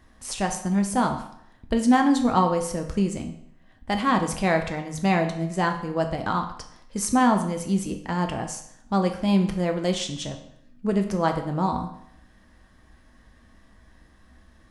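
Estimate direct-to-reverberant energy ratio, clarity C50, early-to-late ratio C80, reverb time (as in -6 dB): 4.0 dB, 9.0 dB, 12.0 dB, 0.70 s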